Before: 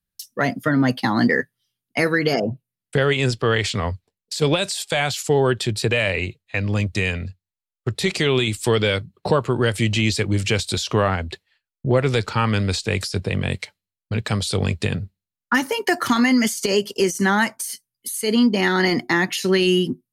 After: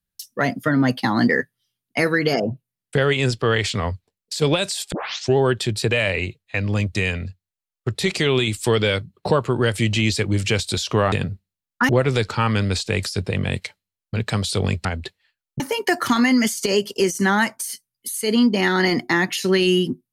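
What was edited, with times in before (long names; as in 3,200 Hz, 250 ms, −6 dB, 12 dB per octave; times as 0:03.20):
0:04.92: tape start 0.45 s
0:11.12–0:11.87: swap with 0:14.83–0:15.60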